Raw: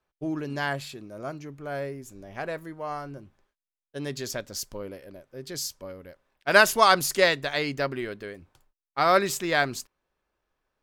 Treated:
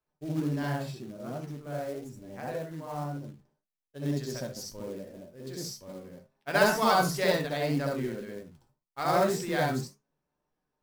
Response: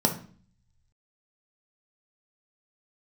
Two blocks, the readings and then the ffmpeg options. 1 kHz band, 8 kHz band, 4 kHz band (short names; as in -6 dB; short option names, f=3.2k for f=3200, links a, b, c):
-4.5 dB, -7.0 dB, -7.5 dB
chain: -filter_complex "[0:a]asplit=2[a][b];[1:a]atrim=start_sample=2205,atrim=end_sample=3528,adelay=65[c];[b][c]afir=irnorm=-1:irlink=0,volume=-10dB[d];[a][d]amix=inputs=2:normalize=0,flanger=delay=9.2:depth=6.3:regen=76:speed=1.9:shape=sinusoidal,acrusher=bits=4:mode=log:mix=0:aa=0.000001,lowshelf=f=440:g=3.5,flanger=delay=6.6:depth=2:regen=63:speed=0.28:shape=sinusoidal,volume=-2dB"